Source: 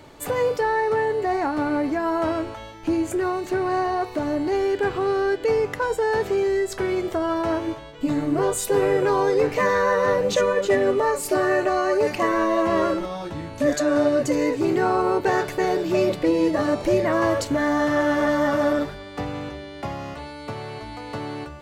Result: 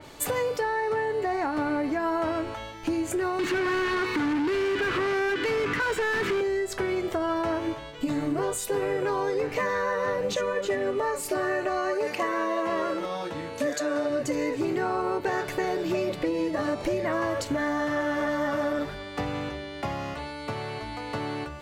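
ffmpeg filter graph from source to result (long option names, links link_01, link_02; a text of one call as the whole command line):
ffmpeg -i in.wav -filter_complex "[0:a]asettb=1/sr,asplit=3[link_01][link_02][link_03];[link_01]atrim=end=3.394[link_04];[link_02]atrim=start=3.39:end=6.41,asetpts=PTS-STARTPTS,afade=type=in:duration=0.004:curve=qsin,afade=type=out:start_time=3.016:duration=0.004:curve=qsin,asuperstop=centerf=670:order=4:qfactor=0.71,asplit=2[link_05][link_06];[link_06]highpass=frequency=720:poles=1,volume=31dB,asoftclip=type=tanh:threshold=-14.5dB[link_07];[link_05][link_07]amix=inputs=2:normalize=0,lowpass=frequency=1200:poles=1,volume=-6dB[link_08];[link_03]atrim=start=6.406[link_09];[link_04][link_08]acrossfade=duration=0.004:curve1=hsin:curve2=qsin[link_10];[link_10][link_09]acrossfade=duration=0.004:curve1=qsin:curve2=hsin,asettb=1/sr,asplit=3[link_11][link_12][link_13];[link_11]atrim=end=11.944[link_14];[link_12]atrim=start=11.94:end=14.1,asetpts=PTS-STARTPTS,afade=type=in:duration=0.004:curve=qsin,afade=type=out:start_time=2.156:duration=0.004:curve=qsin,highpass=frequency=250:poles=1,aeval=exprs='val(0)+0.0126*sin(2*PI*470*n/s)':channel_layout=same[link_15];[link_13]atrim=start=14.096[link_16];[link_14][link_15]acrossfade=duration=0.004:curve1=hsin:curve2=qsin[link_17];[link_17][link_16]acrossfade=duration=0.004:curve1=qsin:curve2=hsin,highshelf=frequency=2100:gain=8,acompressor=threshold=-23dB:ratio=6,adynamicequalizer=threshold=0.00501:dfrequency=3300:dqfactor=0.7:tfrequency=3300:tqfactor=0.7:attack=5:release=100:ratio=0.375:range=3.5:mode=cutabove:tftype=highshelf,volume=-1dB" out.wav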